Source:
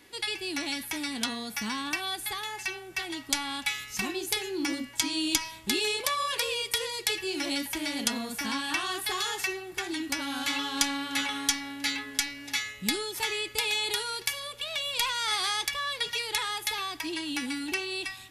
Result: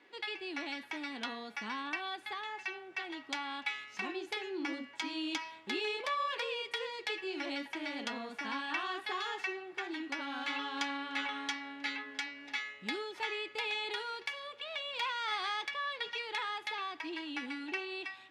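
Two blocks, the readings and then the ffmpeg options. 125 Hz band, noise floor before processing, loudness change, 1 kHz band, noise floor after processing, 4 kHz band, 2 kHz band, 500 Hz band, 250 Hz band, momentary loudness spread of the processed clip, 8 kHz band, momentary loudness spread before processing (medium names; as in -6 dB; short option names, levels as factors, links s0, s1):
under -15 dB, -46 dBFS, -8.0 dB, -3.5 dB, -55 dBFS, -10.0 dB, -5.0 dB, -5.0 dB, -8.0 dB, 5 LU, -21.5 dB, 6 LU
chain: -af "highpass=330,lowpass=2600,volume=0.668"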